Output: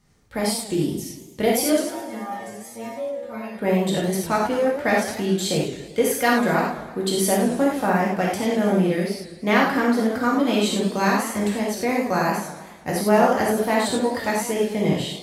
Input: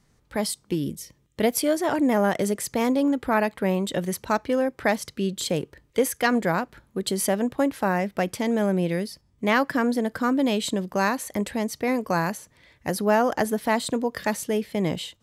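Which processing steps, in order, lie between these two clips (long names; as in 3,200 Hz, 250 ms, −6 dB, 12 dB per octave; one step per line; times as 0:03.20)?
0:01.81–0:03.59: stiff-string resonator 110 Hz, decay 0.53 s, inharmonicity 0.002
reverb whose tail is shaped and stops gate 120 ms flat, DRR −4 dB
feedback echo with a swinging delay time 110 ms, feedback 59%, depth 215 cents, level −12 dB
level −2 dB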